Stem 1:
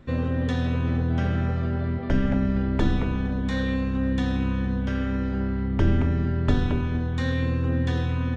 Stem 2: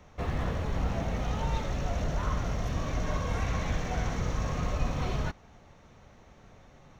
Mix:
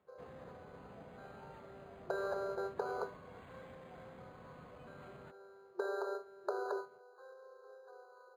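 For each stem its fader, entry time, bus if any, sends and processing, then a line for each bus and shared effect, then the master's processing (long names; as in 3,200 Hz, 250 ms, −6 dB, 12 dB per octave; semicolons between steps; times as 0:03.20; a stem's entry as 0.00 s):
+1.5 dB, 0.00 s, no send, noise gate with hold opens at −14 dBFS; brick-wall band-pass 360–1,700 Hz; downward compressor 3 to 1, threshold −37 dBFS, peak gain reduction 8 dB
−19.5 dB, 0.00 s, no send, high-pass filter 160 Hz 12 dB per octave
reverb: not used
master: linearly interpolated sample-rate reduction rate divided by 8×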